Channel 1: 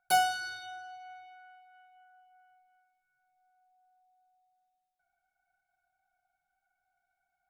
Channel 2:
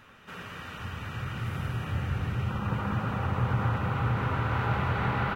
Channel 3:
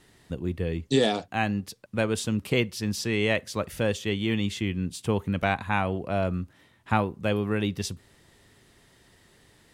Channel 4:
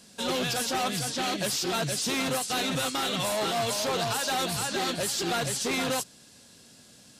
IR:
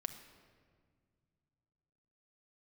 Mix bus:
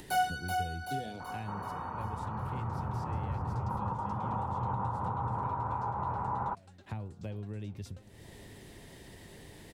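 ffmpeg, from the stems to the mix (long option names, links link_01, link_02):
-filter_complex "[0:a]flanger=delay=17.5:depth=2.1:speed=1.5,volume=0.5dB,asplit=2[link_01][link_02];[link_02]volume=-4.5dB[link_03];[1:a]lowpass=frequency=940:width_type=q:width=6.9,adelay=1200,volume=-4.5dB[link_04];[2:a]equalizer=frequency=1300:width_type=o:width=0.55:gain=-9.5,bandreject=frequency=118.3:width_type=h:width=4,bandreject=frequency=236.6:width_type=h:width=4,bandreject=frequency=354.9:width_type=h:width=4,bandreject=frequency=473.2:width_type=h:width=4,bandreject=frequency=591.5:width_type=h:width=4,bandreject=frequency=709.8:width_type=h:width=4,bandreject=frequency=828.1:width_type=h:width=4,bandreject=frequency=946.4:width_type=h:width=4,bandreject=frequency=1064.7:width_type=h:width=4,bandreject=frequency=1183:width_type=h:width=4,bandreject=frequency=1301.3:width_type=h:width=4,bandreject=frequency=1419.6:width_type=h:width=4,acrossover=split=130[link_05][link_06];[link_06]acompressor=threshold=-48dB:ratio=2[link_07];[link_05][link_07]amix=inputs=2:normalize=0,volume=-11.5dB,asplit=3[link_08][link_09][link_10];[link_09]volume=-13.5dB[link_11];[3:a]lowpass=frequency=8300:width=0.5412,lowpass=frequency=8300:width=1.3066,aeval=exprs='val(0)*pow(10,-33*if(lt(mod(9.3*n/s,1),2*abs(9.3)/1000),1-mod(9.3*n/s,1)/(2*abs(9.3)/1000),(mod(9.3*n/s,1)-2*abs(9.3)/1000)/(1-2*abs(9.3)/1000))/20)':channel_layout=same,adelay=2050,volume=-18.5dB,asplit=2[link_12][link_13];[link_13]volume=-23.5dB[link_14];[link_10]apad=whole_len=407602[link_15];[link_12][link_15]sidechaincompress=threshold=-49dB:ratio=3:attack=16:release=1030[link_16];[link_04][link_08]amix=inputs=2:normalize=0,acompressor=mode=upward:threshold=-31dB:ratio=2.5,alimiter=limit=-24dB:level=0:latency=1:release=284,volume=0dB[link_17];[link_03][link_11][link_14]amix=inputs=3:normalize=0,aecho=0:1:381|762|1143|1524|1905|2286|2667|3048:1|0.54|0.292|0.157|0.085|0.0459|0.0248|0.0134[link_18];[link_01][link_16][link_17][link_18]amix=inputs=4:normalize=0,equalizer=frequency=5400:width_type=o:width=2.8:gain=-6"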